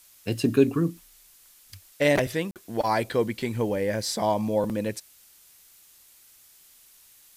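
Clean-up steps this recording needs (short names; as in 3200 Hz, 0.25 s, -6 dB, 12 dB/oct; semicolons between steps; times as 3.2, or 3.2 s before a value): interpolate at 2.51, 48 ms; denoiser 16 dB, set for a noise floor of -55 dBFS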